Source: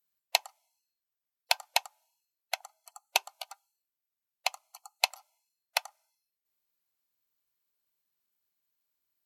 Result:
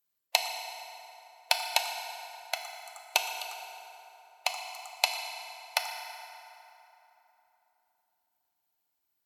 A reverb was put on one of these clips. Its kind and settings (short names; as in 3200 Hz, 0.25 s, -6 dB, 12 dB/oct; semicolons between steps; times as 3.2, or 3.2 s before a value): FDN reverb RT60 3.4 s, high-frequency decay 0.6×, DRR 3 dB